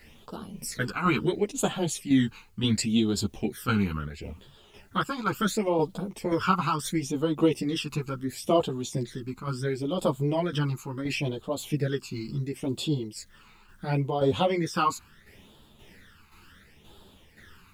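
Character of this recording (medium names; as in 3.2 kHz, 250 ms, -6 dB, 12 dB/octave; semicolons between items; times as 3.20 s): phasing stages 12, 0.72 Hz, lowest notch 570–2000 Hz; a quantiser's noise floor 12-bit, dither triangular; tremolo saw down 1.9 Hz, depth 55%; a shimmering, thickened sound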